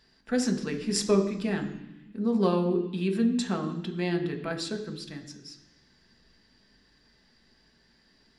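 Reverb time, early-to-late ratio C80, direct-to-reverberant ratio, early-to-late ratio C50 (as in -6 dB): 0.95 s, 12.0 dB, 3.5 dB, 10.0 dB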